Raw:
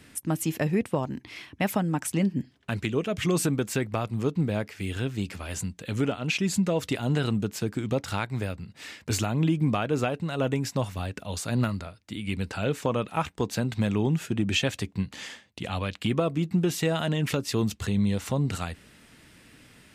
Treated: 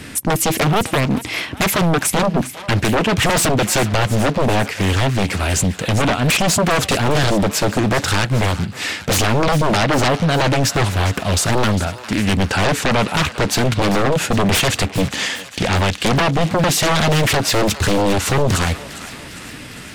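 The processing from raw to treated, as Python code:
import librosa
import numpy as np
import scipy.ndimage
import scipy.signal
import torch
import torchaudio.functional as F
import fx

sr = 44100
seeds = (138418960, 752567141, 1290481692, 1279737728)

p1 = fx.fold_sine(x, sr, drive_db=15, ceiling_db=-12.0)
p2 = p1 + fx.echo_thinned(p1, sr, ms=404, feedback_pct=65, hz=710.0, wet_db=-13.5, dry=0)
y = fx.doppler_dist(p2, sr, depth_ms=0.43)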